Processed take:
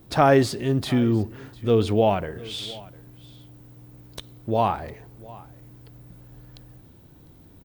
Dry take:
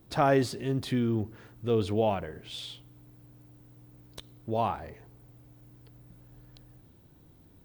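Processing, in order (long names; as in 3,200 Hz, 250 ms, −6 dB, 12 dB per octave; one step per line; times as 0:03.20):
single-tap delay 702 ms −21.5 dB
level +7 dB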